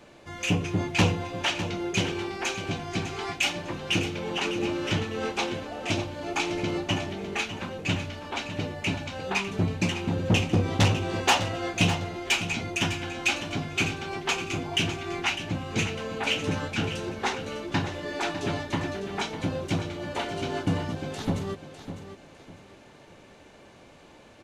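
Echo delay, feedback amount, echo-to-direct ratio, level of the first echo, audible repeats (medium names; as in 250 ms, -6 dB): 603 ms, 29%, -10.5 dB, -11.0 dB, 3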